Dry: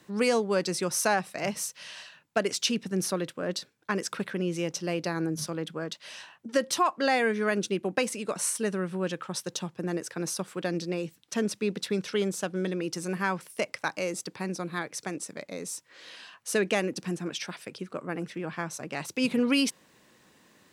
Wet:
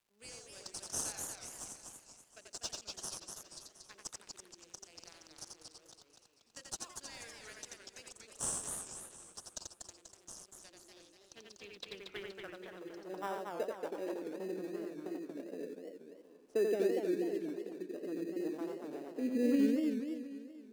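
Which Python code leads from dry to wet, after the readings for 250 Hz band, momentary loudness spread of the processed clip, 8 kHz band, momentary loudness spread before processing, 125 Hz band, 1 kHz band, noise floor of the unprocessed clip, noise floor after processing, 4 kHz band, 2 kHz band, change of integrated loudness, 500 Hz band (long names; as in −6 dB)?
−8.0 dB, 20 LU, −8.5 dB, 12 LU, −20.5 dB, −17.0 dB, −63 dBFS, −66 dBFS, −14.5 dB, −19.0 dB, −9.5 dB, −9.5 dB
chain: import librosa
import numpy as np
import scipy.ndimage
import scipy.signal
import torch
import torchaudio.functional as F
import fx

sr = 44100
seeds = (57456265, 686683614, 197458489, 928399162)

p1 = fx.wiener(x, sr, points=25)
p2 = fx.notch(p1, sr, hz=530.0, q=17.0)
p3 = fx.rotary(p2, sr, hz=0.9)
p4 = scipy.signal.sosfilt(scipy.signal.butter(4, 220.0, 'highpass', fs=sr, output='sos'), p3)
p5 = p4 + 10.0 ** (-3.5 / 20.0) * np.pad(p4, (int(87 * sr / 1000.0), 0))[:len(p4)]
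p6 = fx.filter_sweep_bandpass(p5, sr, from_hz=7400.0, to_hz=380.0, start_s=10.7, end_s=13.89, q=1.9)
p7 = fx.vibrato(p6, sr, rate_hz=0.31, depth_cents=29.0)
p8 = fx.dmg_crackle(p7, sr, seeds[0], per_s=350.0, level_db=-64.0)
p9 = fx.sample_hold(p8, sr, seeds[1], rate_hz=2200.0, jitter_pct=0)
p10 = p8 + (p9 * librosa.db_to_amplitude(-9.0))
p11 = fx.echo_warbled(p10, sr, ms=239, feedback_pct=48, rate_hz=2.8, cents=212, wet_db=-4.5)
y = p11 * librosa.db_to_amplitude(-3.0)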